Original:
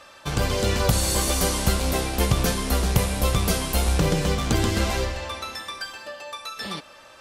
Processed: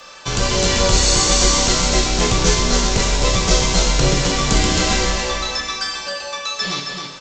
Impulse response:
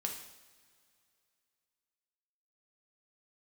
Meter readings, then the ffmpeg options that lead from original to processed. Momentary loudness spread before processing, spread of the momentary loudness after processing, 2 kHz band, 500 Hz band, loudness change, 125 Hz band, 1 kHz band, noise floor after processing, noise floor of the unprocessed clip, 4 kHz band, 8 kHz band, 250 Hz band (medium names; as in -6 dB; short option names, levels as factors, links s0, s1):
12 LU, 10 LU, +8.0 dB, +6.0 dB, +7.0 dB, +2.5 dB, +7.0 dB, -35 dBFS, -48 dBFS, +11.0 dB, +10.5 dB, +4.5 dB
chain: -filter_complex "[0:a]aresample=16000,asoftclip=type=tanh:threshold=0.188,aresample=44100,afreqshift=-20,crystalizer=i=2.5:c=0,aecho=1:1:269:0.531[s0];[1:a]atrim=start_sample=2205[s1];[s0][s1]afir=irnorm=-1:irlink=0,volume=1.78"